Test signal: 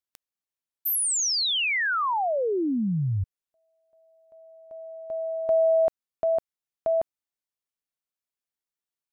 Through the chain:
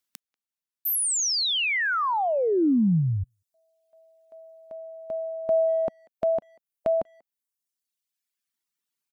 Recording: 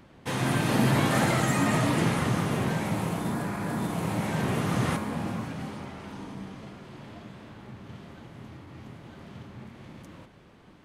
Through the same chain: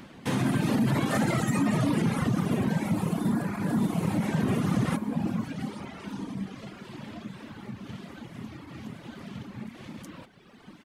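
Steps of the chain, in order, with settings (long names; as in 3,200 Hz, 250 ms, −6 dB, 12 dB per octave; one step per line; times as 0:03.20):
reverb reduction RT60 1.5 s
parametric band 220 Hz +9.5 dB 1.3 octaves
brickwall limiter −17 dBFS
far-end echo of a speakerphone 190 ms, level −29 dB
one half of a high-frequency compander encoder only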